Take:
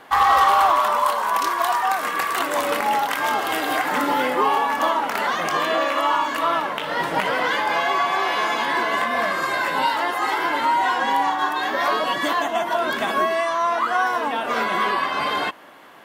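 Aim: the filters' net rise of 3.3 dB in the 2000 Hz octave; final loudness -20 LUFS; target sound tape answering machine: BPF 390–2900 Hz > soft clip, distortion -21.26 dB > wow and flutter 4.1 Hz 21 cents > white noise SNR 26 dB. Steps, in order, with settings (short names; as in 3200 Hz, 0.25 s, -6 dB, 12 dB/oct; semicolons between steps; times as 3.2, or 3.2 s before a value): BPF 390–2900 Hz; bell 2000 Hz +5 dB; soft clip -10 dBFS; wow and flutter 4.1 Hz 21 cents; white noise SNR 26 dB; gain +0.5 dB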